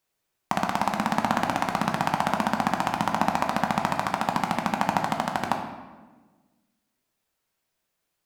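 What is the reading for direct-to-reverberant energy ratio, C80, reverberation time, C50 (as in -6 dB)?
2.0 dB, 8.0 dB, 1.3 s, 6.0 dB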